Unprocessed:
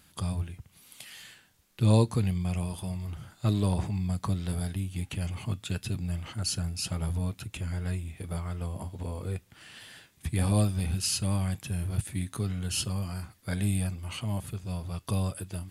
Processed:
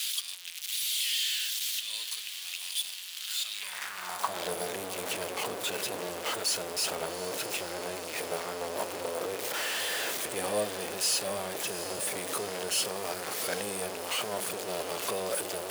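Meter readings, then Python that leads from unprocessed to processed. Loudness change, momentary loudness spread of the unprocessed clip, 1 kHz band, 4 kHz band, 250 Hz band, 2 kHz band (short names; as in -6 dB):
-0.5 dB, 13 LU, +6.0 dB, +8.0 dB, -11.5 dB, +8.5 dB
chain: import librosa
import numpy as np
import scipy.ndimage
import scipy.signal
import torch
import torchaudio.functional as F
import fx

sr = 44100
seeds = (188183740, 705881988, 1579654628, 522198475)

y = x + 0.5 * 10.0 ** (-24.5 / 20.0) * np.sign(x)
y = fx.echo_diffused(y, sr, ms=770, feedback_pct=70, wet_db=-12.0)
y = fx.filter_sweep_highpass(y, sr, from_hz=3300.0, to_hz=490.0, start_s=3.42, end_s=4.52, q=2.2)
y = y * 10.0 ** (-3.0 / 20.0)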